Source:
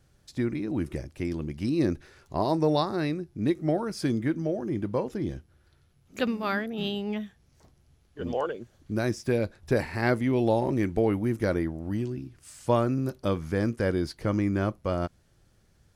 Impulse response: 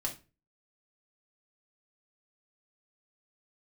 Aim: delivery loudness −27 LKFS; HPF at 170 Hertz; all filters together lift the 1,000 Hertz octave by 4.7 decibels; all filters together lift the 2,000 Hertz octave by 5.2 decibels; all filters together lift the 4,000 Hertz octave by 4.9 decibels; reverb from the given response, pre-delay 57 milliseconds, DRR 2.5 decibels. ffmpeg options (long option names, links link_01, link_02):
-filter_complex "[0:a]highpass=170,equalizer=frequency=1000:width_type=o:gain=5,equalizer=frequency=2000:width_type=o:gain=4,equalizer=frequency=4000:width_type=o:gain=4.5,asplit=2[link_01][link_02];[1:a]atrim=start_sample=2205,adelay=57[link_03];[link_02][link_03]afir=irnorm=-1:irlink=0,volume=-4.5dB[link_04];[link_01][link_04]amix=inputs=2:normalize=0,volume=-1.5dB"